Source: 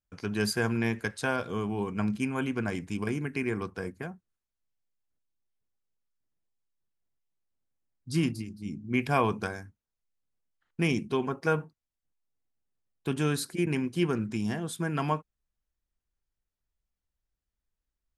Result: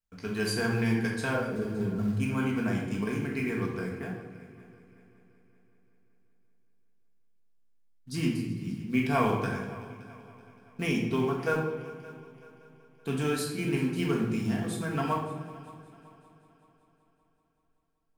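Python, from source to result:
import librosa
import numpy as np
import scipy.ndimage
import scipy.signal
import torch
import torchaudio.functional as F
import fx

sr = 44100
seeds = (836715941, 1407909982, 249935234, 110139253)

p1 = fx.envelope_sharpen(x, sr, power=3.0, at=(1.34, 2.17))
p2 = fx.wow_flutter(p1, sr, seeds[0], rate_hz=2.1, depth_cents=26.0)
p3 = fx.quant_float(p2, sr, bits=2)
p4 = p2 + F.gain(torch.from_numpy(p3), -5.0).numpy()
p5 = fx.echo_heads(p4, sr, ms=190, heads='second and third', feedback_pct=45, wet_db=-19.5)
p6 = fx.room_shoebox(p5, sr, seeds[1], volume_m3=430.0, walls='mixed', distance_m=1.6)
y = F.gain(torch.from_numpy(p6), -8.0).numpy()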